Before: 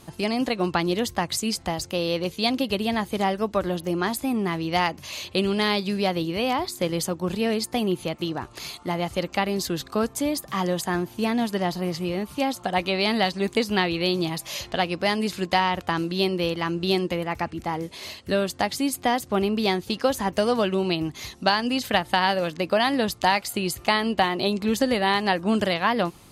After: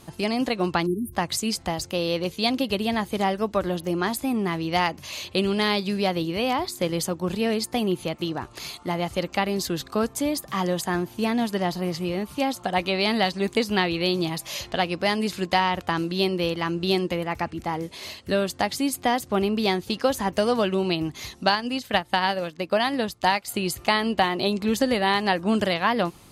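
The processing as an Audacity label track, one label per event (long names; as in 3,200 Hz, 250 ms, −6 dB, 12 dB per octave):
0.860000	1.130000	time-frequency box erased 420–8,800 Hz
21.550000	23.480000	expander for the loud parts, over −38 dBFS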